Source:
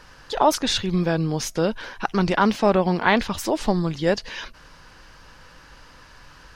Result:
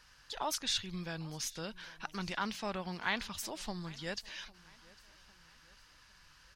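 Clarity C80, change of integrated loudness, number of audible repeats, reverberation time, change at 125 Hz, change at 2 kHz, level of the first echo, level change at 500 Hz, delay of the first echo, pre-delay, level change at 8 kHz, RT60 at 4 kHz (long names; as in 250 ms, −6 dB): no reverb audible, −16.5 dB, 2, no reverb audible, −19.0 dB, −13.0 dB, −23.0 dB, −22.0 dB, 802 ms, no reverb audible, −8.5 dB, no reverb audible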